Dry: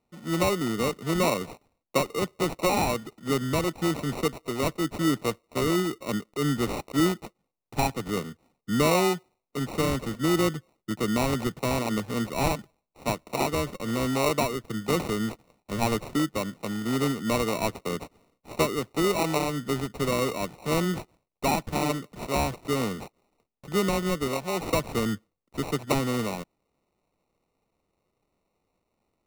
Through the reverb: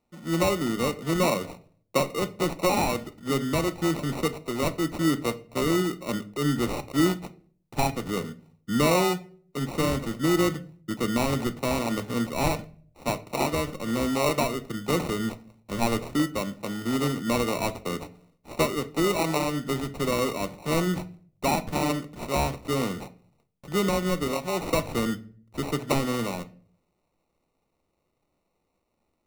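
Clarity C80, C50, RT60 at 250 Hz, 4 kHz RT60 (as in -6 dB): 22.5 dB, 18.0 dB, 0.65 s, 0.30 s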